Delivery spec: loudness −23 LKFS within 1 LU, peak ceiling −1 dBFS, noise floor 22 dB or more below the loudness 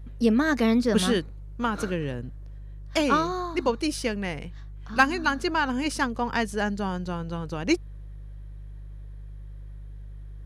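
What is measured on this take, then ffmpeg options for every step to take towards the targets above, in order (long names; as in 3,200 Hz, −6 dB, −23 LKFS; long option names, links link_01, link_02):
mains hum 50 Hz; hum harmonics up to 150 Hz; level of the hum −37 dBFS; integrated loudness −26.0 LKFS; sample peak −7.0 dBFS; target loudness −23.0 LKFS
→ -af "bandreject=frequency=50:width_type=h:width=4,bandreject=frequency=100:width_type=h:width=4,bandreject=frequency=150:width_type=h:width=4"
-af "volume=3dB"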